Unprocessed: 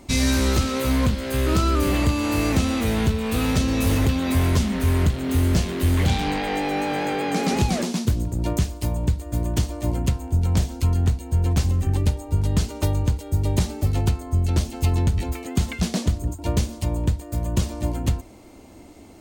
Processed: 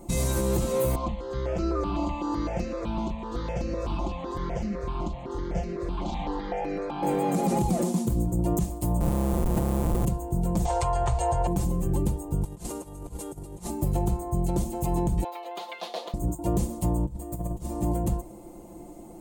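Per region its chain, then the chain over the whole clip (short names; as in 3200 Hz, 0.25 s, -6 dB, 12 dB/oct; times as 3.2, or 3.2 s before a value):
0.95–7.03 inverse Chebyshev low-pass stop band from 9500 Hz + bell 130 Hz -10.5 dB 2.3 oct + step phaser 7.9 Hz 470–3400 Hz
9–10.05 flutter echo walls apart 5.1 m, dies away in 1.1 s + compressor 4:1, threshold -19 dBFS + Schmitt trigger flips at -22.5 dBFS
10.65–11.47 EQ curve 120 Hz 0 dB, 220 Hz -29 dB, 480 Hz +3 dB, 790 Hz +12 dB, 2100 Hz +11 dB, 4800 Hz +6 dB, 8200 Hz 0 dB, 14000 Hz -27 dB + fast leveller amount 50%
12.44–13.7 CVSD 64 kbps + low shelf 400 Hz -10.5 dB + negative-ratio compressor -35 dBFS, ratio -0.5
15.24–16.14 HPF 540 Hz 24 dB/oct + resonant high shelf 5600 Hz -14 dB, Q 3
17.05–17.75 negative-ratio compressor -26 dBFS, ratio -0.5 + resonator 68 Hz, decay 0.46 s
whole clip: band shelf 2800 Hz -14 dB 2.4 oct; comb 5.8 ms, depth 86%; limiter -16.5 dBFS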